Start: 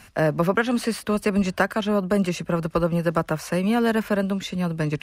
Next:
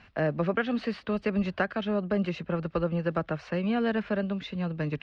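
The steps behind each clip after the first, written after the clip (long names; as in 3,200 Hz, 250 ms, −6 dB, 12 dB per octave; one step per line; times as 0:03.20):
low-pass filter 4,000 Hz 24 dB per octave
dynamic equaliser 1,000 Hz, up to −7 dB, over −43 dBFS, Q 5
level −6 dB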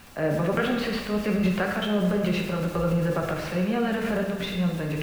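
background noise pink −52 dBFS
transient designer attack −2 dB, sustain +8 dB
dense smooth reverb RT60 1.3 s, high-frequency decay 0.85×, pre-delay 0 ms, DRR 0 dB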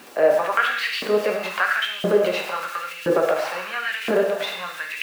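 auto-filter high-pass saw up 0.98 Hz 310–2,800 Hz
level +4.5 dB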